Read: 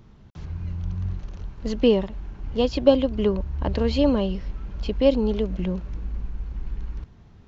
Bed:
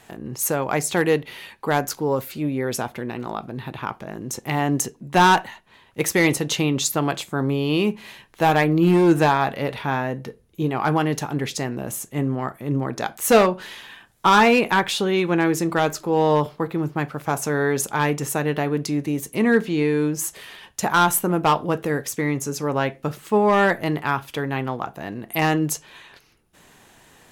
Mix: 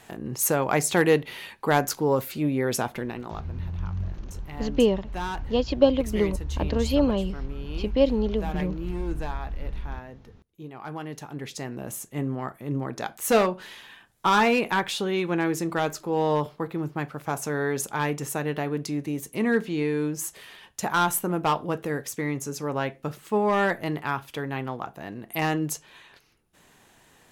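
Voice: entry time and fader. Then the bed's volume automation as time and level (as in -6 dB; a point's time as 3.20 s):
2.95 s, -2.0 dB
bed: 2.97 s -0.5 dB
3.79 s -17.5 dB
10.75 s -17.5 dB
11.86 s -5.5 dB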